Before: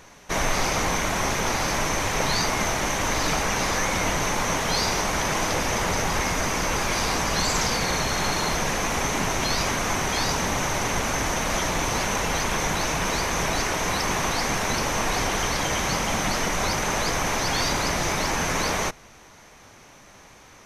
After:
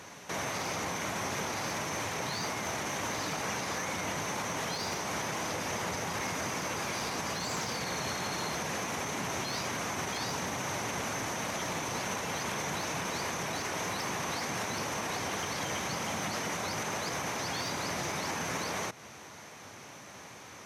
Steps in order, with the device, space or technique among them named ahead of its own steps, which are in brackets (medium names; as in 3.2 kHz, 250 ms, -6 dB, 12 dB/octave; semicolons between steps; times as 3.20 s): podcast mastering chain (high-pass 91 Hz 24 dB/octave; de-esser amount 55%; compression 4:1, threshold -30 dBFS, peak gain reduction 8.5 dB; peak limiter -26.5 dBFS, peak gain reduction 7.5 dB; trim +1.5 dB; MP3 112 kbps 48 kHz)